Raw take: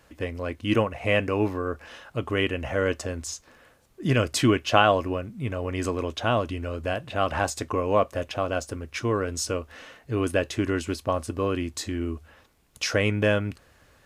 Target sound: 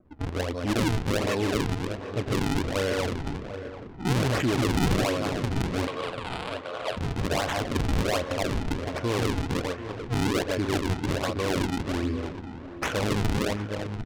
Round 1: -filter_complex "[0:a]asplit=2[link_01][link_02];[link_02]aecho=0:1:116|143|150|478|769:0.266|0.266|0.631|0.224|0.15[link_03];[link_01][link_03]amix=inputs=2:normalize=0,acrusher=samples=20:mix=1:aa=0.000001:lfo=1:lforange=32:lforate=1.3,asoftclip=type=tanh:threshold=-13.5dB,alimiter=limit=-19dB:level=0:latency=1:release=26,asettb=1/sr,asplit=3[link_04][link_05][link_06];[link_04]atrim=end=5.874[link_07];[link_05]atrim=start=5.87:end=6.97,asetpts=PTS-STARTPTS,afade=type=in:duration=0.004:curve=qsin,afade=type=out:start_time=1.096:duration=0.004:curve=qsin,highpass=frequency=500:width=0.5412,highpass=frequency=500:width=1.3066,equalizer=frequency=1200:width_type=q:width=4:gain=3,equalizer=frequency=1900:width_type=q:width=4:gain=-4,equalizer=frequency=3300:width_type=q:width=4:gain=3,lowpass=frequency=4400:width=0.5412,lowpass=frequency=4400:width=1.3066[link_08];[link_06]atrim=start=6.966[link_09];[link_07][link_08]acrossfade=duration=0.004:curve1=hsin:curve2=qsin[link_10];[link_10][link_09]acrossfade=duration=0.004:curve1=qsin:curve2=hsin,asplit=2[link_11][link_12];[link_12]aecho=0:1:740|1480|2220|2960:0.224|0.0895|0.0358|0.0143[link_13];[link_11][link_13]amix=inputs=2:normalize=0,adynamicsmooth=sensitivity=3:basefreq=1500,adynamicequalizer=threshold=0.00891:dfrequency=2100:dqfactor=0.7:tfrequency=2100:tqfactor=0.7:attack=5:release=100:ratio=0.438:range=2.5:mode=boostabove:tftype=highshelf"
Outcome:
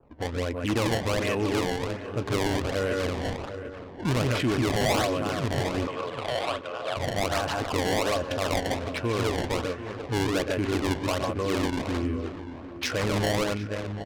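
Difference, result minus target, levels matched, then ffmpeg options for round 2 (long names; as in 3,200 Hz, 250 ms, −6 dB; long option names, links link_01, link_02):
sample-and-hold swept by an LFO: distortion −6 dB
-filter_complex "[0:a]asplit=2[link_01][link_02];[link_02]aecho=0:1:116|143|150|478|769:0.266|0.266|0.631|0.224|0.15[link_03];[link_01][link_03]amix=inputs=2:normalize=0,acrusher=samples=45:mix=1:aa=0.000001:lfo=1:lforange=72:lforate=1.3,asoftclip=type=tanh:threshold=-13.5dB,alimiter=limit=-19dB:level=0:latency=1:release=26,asettb=1/sr,asplit=3[link_04][link_05][link_06];[link_04]atrim=end=5.874[link_07];[link_05]atrim=start=5.87:end=6.97,asetpts=PTS-STARTPTS,afade=type=in:duration=0.004:curve=qsin,afade=type=out:start_time=1.096:duration=0.004:curve=qsin,highpass=frequency=500:width=0.5412,highpass=frequency=500:width=1.3066,equalizer=frequency=1200:width_type=q:width=4:gain=3,equalizer=frequency=1900:width_type=q:width=4:gain=-4,equalizer=frequency=3300:width_type=q:width=4:gain=3,lowpass=frequency=4400:width=0.5412,lowpass=frequency=4400:width=1.3066[link_08];[link_06]atrim=start=6.966[link_09];[link_07][link_08]acrossfade=duration=0.004:curve1=hsin:curve2=qsin[link_10];[link_10][link_09]acrossfade=duration=0.004:curve1=qsin:curve2=hsin,asplit=2[link_11][link_12];[link_12]aecho=0:1:740|1480|2220|2960:0.224|0.0895|0.0358|0.0143[link_13];[link_11][link_13]amix=inputs=2:normalize=0,adynamicsmooth=sensitivity=3:basefreq=1500,adynamicequalizer=threshold=0.00891:dfrequency=2100:dqfactor=0.7:tfrequency=2100:tqfactor=0.7:attack=5:release=100:ratio=0.438:range=2.5:mode=boostabove:tftype=highshelf"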